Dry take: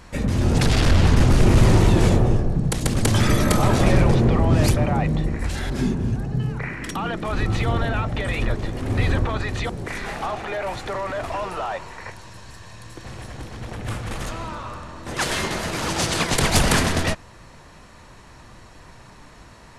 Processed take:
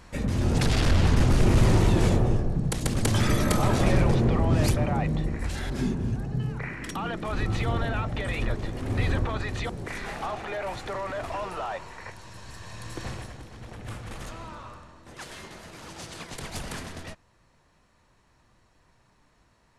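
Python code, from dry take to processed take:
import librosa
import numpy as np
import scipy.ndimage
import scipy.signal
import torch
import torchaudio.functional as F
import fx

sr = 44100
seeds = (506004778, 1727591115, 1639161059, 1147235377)

y = fx.gain(x, sr, db=fx.line((12.13, -5.0), (13.05, 3.0), (13.42, -9.0), (14.65, -9.0), (15.26, -18.0)))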